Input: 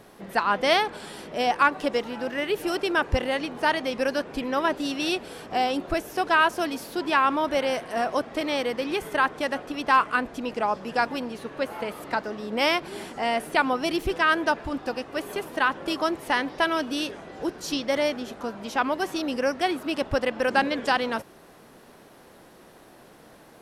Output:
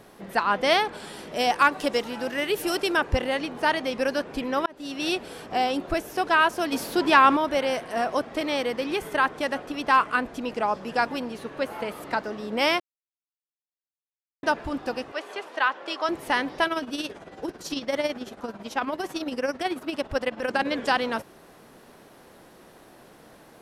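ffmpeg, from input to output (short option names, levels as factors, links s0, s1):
-filter_complex "[0:a]asettb=1/sr,asplit=3[s0][s1][s2];[s0]atrim=end=1.274[s3];[s1]atrim=start=1.27:end=2.97,asetpts=PTS-STARTPTS,afade=t=in:d=0.004:c=qsin,afade=t=out:st=1.696:d=0.004:c=qsin,highshelf=f=4400:g=8.5[s4];[s2]atrim=start=2.966[s5];[s3][s4]acrossfade=d=0.004:c1=hsin:c2=qsin[s6];[s6][s5]acrossfade=d=0.004:c1=qsin:c2=hsin,asettb=1/sr,asplit=3[s7][s8][s9];[s7]atrim=end=6.724[s10];[s8]atrim=start=6.72:end=7.37,asetpts=PTS-STARTPTS,afade=t=in:d=0.004:c=qsin,afade=t=out:st=0.646:d=0.004:c=qsin,acontrast=37[s11];[s9]atrim=start=7.366[s12];[s10][s11]acrossfade=d=0.004:c1=hsin:c2=qsin[s13];[s13][s12]acrossfade=d=0.004:c1=qsin:c2=hsin,asettb=1/sr,asplit=3[s14][s15][s16];[s14]atrim=end=15.124[s17];[s15]atrim=start=15.12:end=16.09,asetpts=PTS-STARTPTS,afade=t=in:d=0.004:c=qsin,afade=t=out:st=0.966:d=0.004:c=qsin,highpass=540,lowpass=5500[s18];[s16]atrim=start=16.086[s19];[s17][s18]acrossfade=d=0.004:c1=hsin:c2=qsin[s20];[s20][s19]acrossfade=d=0.004:c1=qsin:c2=hsin,asplit=3[s21][s22][s23];[s21]afade=t=out:st=16.64:d=0.02[s24];[s22]tremolo=f=18:d=0.64,afade=t=in:st=16.64:d=0.02,afade=t=out:st=20.65:d=0.02[s25];[s23]afade=t=in:st=20.65:d=0.02[s26];[s24][s25][s26]amix=inputs=3:normalize=0,asplit=4[s27][s28][s29][s30];[s27]atrim=end=4.66,asetpts=PTS-STARTPTS,afade=t=out:st=4.656:d=0.004:c=hsin[s31];[s28]atrim=start=4.66:end=12.8,asetpts=PTS-STARTPTS,afade=t=in:d=0.43,afade=t=out:st=8.136:d=0.004:c=hsin[s32];[s29]atrim=start=12.8:end=14.43,asetpts=PTS-STARTPTS,volume=0[s33];[s30]atrim=start=14.43,asetpts=PTS-STARTPTS,afade=t=in:d=0.004:c=hsin[s34];[s31][s32][s33][s34]concat=n=4:v=0:a=1"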